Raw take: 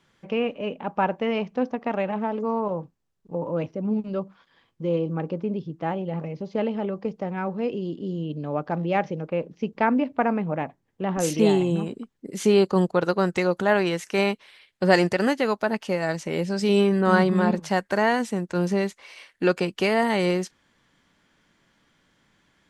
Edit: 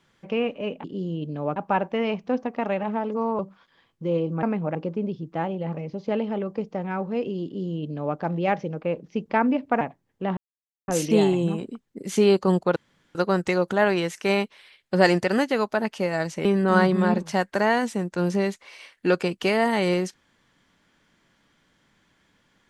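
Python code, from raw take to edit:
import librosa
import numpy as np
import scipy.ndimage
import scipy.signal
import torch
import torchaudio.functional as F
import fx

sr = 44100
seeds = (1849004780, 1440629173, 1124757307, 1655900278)

y = fx.edit(x, sr, fx.cut(start_s=2.67, length_s=1.51),
    fx.duplicate(start_s=7.92, length_s=0.72, to_s=0.84),
    fx.move(start_s=10.28, length_s=0.32, to_s=5.22),
    fx.insert_silence(at_s=11.16, length_s=0.51),
    fx.insert_room_tone(at_s=13.04, length_s=0.39),
    fx.cut(start_s=16.34, length_s=0.48), tone=tone)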